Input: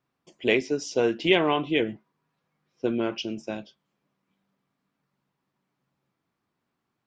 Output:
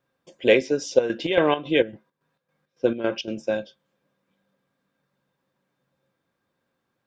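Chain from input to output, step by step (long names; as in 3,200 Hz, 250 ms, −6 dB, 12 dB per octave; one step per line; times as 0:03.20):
hollow resonant body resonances 530/1,600/3,600 Hz, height 14 dB, ringing for 70 ms
0:00.82–0:03.28: square-wave tremolo 3.6 Hz, depth 65%, duty 60%
level +2 dB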